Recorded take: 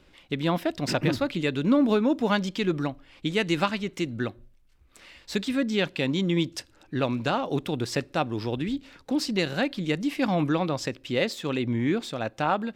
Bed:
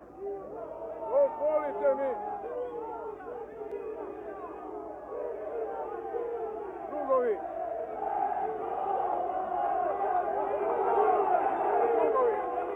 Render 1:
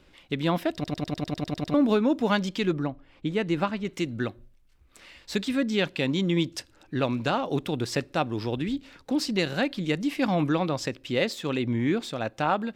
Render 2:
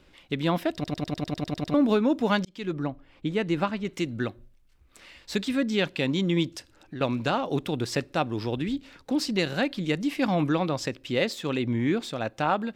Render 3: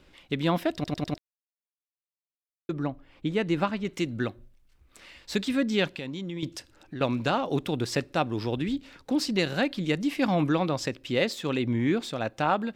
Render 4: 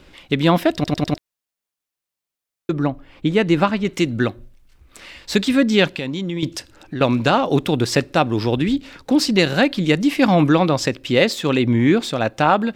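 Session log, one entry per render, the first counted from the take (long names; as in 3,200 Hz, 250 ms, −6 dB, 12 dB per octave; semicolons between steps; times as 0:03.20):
0:00.74: stutter in place 0.10 s, 10 plays; 0:02.73–0:03.85: high-shelf EQ 2,200 Hz −12 dB
0:02.45–0:02.88: fade in; 0:06.53–0:07.01: downward compressor 3 to 1, threshold −35 dBFS
0:01.18–0:02.69: silence; 0:05.87–0:06.43: downward compressor 3 to 1, threshold −35 dBFS
level +10 dB; brickwall limiter −3 dBFS, peak gain reduction 1.5 dB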